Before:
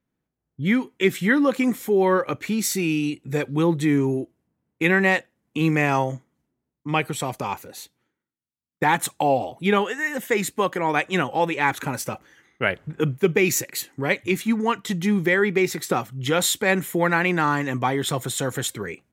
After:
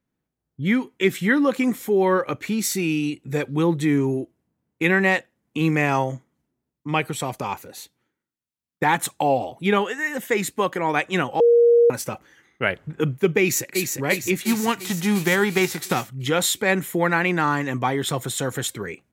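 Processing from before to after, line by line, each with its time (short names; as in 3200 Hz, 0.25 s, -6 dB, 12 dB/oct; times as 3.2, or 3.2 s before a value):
11.4–11.9 bleep 472 Hz -11 dBFS
13.4–13.91 echo throw 0.35 s, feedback 60%, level -4.5 dB
14.45–16.08 spectral whitening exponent 0.6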